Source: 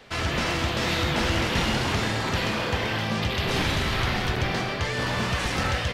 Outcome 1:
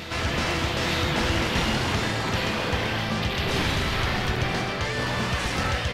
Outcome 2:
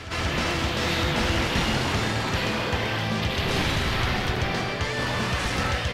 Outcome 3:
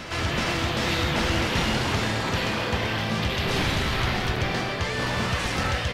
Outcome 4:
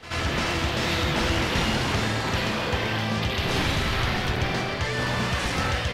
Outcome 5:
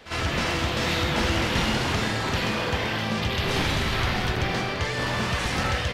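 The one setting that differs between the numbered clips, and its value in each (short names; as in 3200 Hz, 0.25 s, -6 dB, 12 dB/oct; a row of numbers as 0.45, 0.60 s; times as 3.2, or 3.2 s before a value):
reverse echo, time: 906, 181, 400, 82, 51 ms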